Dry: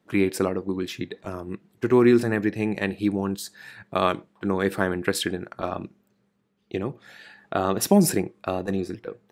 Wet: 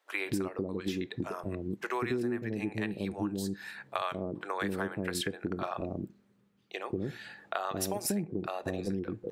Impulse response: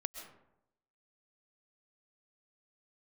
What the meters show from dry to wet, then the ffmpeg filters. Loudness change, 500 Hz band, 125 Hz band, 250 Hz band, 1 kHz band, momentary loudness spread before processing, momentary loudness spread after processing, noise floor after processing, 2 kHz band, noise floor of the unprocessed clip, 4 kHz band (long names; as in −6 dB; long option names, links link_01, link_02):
−10.0 dB, −11.0 dB, −8.5 dB, −10.5 dB, −7.5 dB, 16 LU, 6 LU, −68 dBFS, −7.0 dB, −69 dBFS, −7.0 dB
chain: -filter_complex "[0:a]acrossover=split=550[link_01][link_02];[link_01]adelay=190[link_03];[link_03][link_02]amix=inputs=2:normalize=0,acompressor=threshold=-29dB:ratio=10"